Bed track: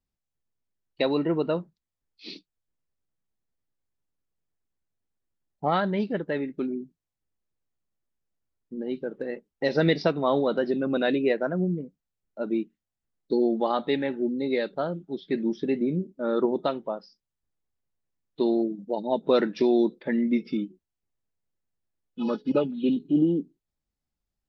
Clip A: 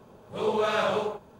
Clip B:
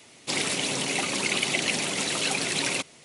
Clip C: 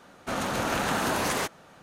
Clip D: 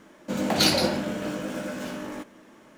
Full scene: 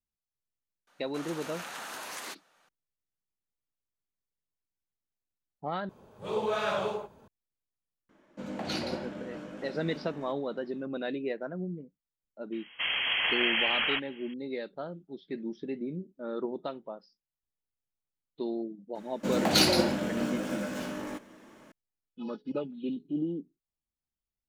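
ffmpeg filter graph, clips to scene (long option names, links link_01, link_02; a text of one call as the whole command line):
ffmpeg -i bed.wav -i cue0.wav -i cue1.wav -i cue2.wav -i cue3.wav -filter_complex "[3:a]asplit=2[link_01][link_02];[4:a]asplit=2[link_03][link_04];[0:a]volume=-10dB[link_05];[link_01]highpass=frequency=1300:poles=1[link_06];[link_03]aemphasis=mode=reproduction:type=50fm[link_07];[link_02]lowpass=frequency=2900:width_type=q:width=0.5098,lowpass=frequency=2900:width_type=q:width=0.6013,lowpass=frequency=2900:width_type=q:width=0.9,lowpass=frequency=2900:width_type=q:width=2.563,afreqshift=-3400[link_08];[link_05]asplit=2[link_09][link_10];[link_09]atrim=end=5.894[link_11];[1:a]atrim=end=1.39,asetpts=PTS-STARTPTS,volume=-4.5dB[link_12];[link_10]atrim=start=7.276[link_13];[link_06]atrim=end=1.82,asetpts=PTS-STARTPTS,volume=-9.5dB,afade=type=in:duration=0.004:curve=hsin,afade=type=out:start_time=1.816:duration=0.004:curve=hsin,adelay=870[link_14];[link_07]atrim=end=2.77,asetpts=PTS-STARTPTS,volume=-11.5dB,afade=type=in:duration=0.004:curve=hsin,afade=type=out:start_time=2.766:duration=0.004:curve=hsin,adelay=8090[link_15];[link_08]atrim=end=1.82,asetpts=PTS-STARTPTS,volume=-0.5dB,afade=type=in:duration=0.004:curve=hsin,afade=type=out:start_time=1.816:duration=0.004:curve=hsin,adelay=552132S[link_16];[link_04]atrim=end=2.77,asetpts=PTS-STARTPTS,volume=-2dB,afade=type=in:duration=0.004:curve=hsin,afade=type=out:start_time=2.766:duration=0.004:curve=hsin,adelay=18950[link_17];[link_11][link_12]acrossfade=duration=0.004:curve1=hsin:curve2=hsin[link_18];[link_18][link_13]acrossfade=duration=0.004:curve1=hsin:curve2=hsin[link_19];[link_19][link_14][link_15][link_16][link_17]amix=inputs=5:normalize=0" out.wav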